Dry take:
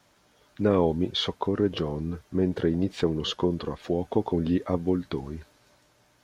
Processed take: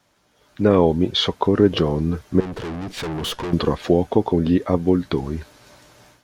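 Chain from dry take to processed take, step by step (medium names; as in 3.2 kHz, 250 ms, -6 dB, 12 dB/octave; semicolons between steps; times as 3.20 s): 2.40–3.53 s: valve stage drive 38 dB, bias 0.65; level rider gain up to 15.5 dB; trim -1 dB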